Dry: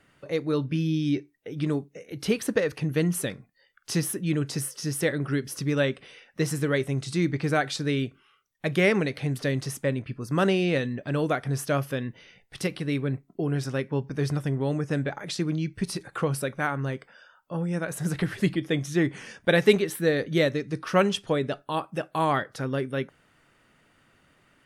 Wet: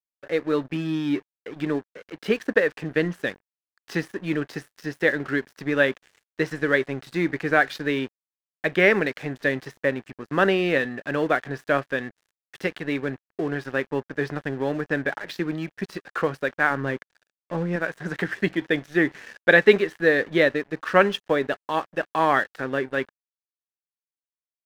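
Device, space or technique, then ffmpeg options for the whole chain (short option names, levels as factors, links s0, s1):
pocket radio on a weak battery: -filter_complex "[0:a]asettb=1/sr,asplit=3[s0][s1][s2];[s0]atrim=end=16.704[s3];[s1]atrim=start=16.7:end=17.76,asetpts=PTS-STARTPTS,afade=t=in:d=0.004:c=qsin,afade=t=out:st=1.056:d=0.004:c=qsin,lowshelf=f=360:g=6.5[s4];[s2]atrim=start=17.756[s5];[s3][s4]acrossfade=d=0.004:c1=hsin:c2=qsin[s6];[s6][s5]acrossfade=d=0.004:c1=qsin:c2=hsin,highpass=260,lowpass=3200,aeval=exprs='sgn(val(0))*max(abs(val(0))-0.00501,0)':c=same,equalizer=f=1700:t=o:w=0.31:g=8.5,volume=1.68"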